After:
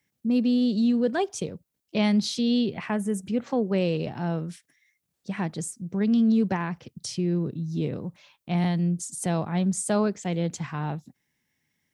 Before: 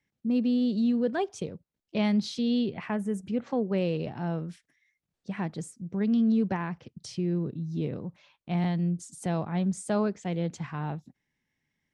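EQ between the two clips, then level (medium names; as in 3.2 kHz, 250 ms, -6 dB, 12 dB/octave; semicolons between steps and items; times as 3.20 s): high-pass 57 Hz; treble shelf 6.3 kHz +12 dB; +3.0 dB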